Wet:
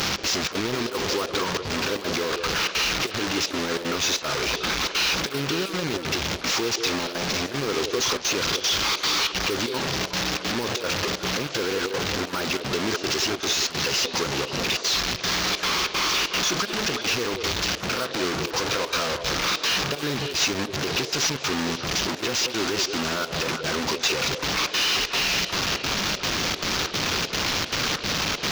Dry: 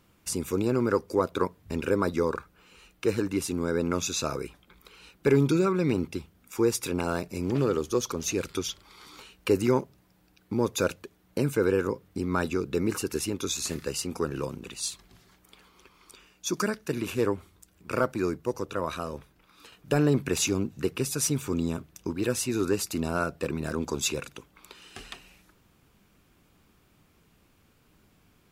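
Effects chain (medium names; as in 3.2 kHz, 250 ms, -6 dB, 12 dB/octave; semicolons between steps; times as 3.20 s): one-bit delta coder 32 kbps, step -22 dBFS; peak limiter -19 dBFS, peak gain reduction 8 dB; trance gate "xx.xxx.xxxx.xx" 191 bpm -12 dB; in parallel at -6.5 dB: bit crusher 6-bit; on the sum: tilt EQ +2 dB/octave; repeats whose band climbs or falls 181 ms, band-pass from 480 Hz, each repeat 1.4 oct, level -4 dB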